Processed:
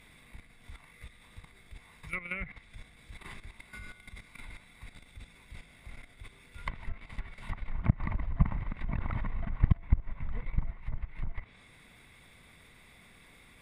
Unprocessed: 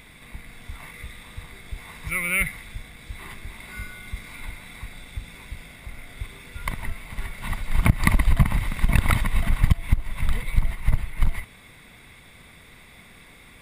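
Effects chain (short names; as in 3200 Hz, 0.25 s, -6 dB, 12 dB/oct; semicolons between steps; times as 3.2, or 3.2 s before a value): level quantiser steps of 13 dB; treble ducked by the level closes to 1500 Hz, closed at -24 dBFS; gain -5 dB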